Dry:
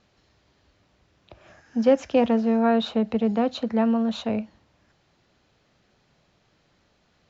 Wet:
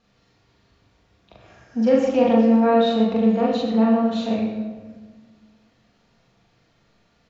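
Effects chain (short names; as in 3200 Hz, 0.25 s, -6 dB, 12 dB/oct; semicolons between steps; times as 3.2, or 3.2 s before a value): loudspeakers at several distances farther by 14 m 0 dB, 43 m -9 dB; shoebox room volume 1200 m³, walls mixed, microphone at 1.7 m; gain -4 dB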